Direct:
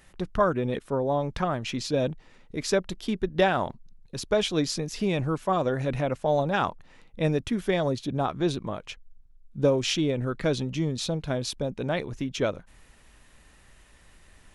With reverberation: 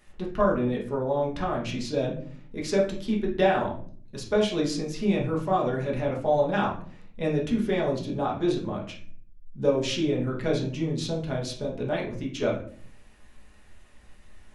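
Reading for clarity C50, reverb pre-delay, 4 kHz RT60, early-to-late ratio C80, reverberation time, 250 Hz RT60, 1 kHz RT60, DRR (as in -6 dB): 7.5 dB, 5 ms, 0.30 s, 12.5 dB, 0.50 s, 0.80 s, 0.40 s, -3.0 dB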